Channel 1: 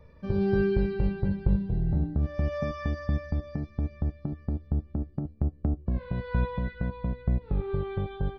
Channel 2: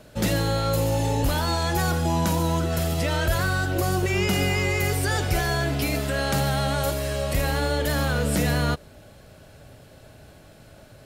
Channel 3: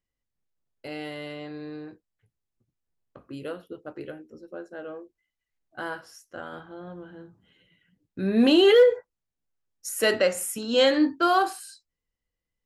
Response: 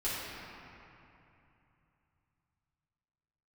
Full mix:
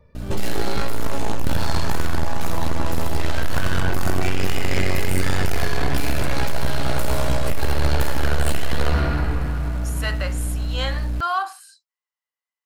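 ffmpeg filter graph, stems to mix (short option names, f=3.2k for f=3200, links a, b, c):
-filter_complex "[0:a]volume=-8.5dB[a];[1:a]bandreject=f=60:t=h:w=6,bandreject=f=120:t=h:w=6,bandreject=f=180:t=h:w=6,aeval=exprs='max(val(0),0)':c=same,aeval=exprs='val(0)+0.0112*(sin(2*PI*60*n/s)+sin(2*PI*2*60*n/s)/2+sin(2*PI*3*60*n/s)/3+sin(2*PI*4*60*n/s)/4+sin(2*PI*5*60*n/s)/5)':c=same,adelay=150,volume=1dB,asplit=2[b][c];[c]volume=-5.5dB[d];[2:a]highpass=f=990:t=q:w=2.1,volume=-11dB[e];[3:a]atrim=start_sample=2205[f];[d][f]afir=irnorm=-1:irlink=0[g];[a][b][e][g]amix=inputs=4:normalize=0,acontrast=90,asoftclip=type=tanh:threshold=-11dB"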